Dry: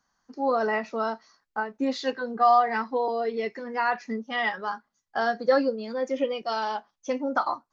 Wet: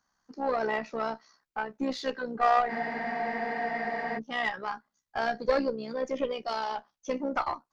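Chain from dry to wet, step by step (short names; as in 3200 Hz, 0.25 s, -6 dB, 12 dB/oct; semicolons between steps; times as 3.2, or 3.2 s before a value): one diode to ground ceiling -19.5 dBFS; AM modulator 65 Hz, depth 35%; spectral freeze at 2.71, 1.46 s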